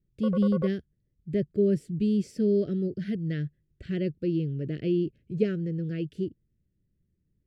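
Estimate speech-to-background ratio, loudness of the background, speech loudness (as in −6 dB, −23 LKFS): 7.5 dB, −36.5 LKFS, −29.0 LKFS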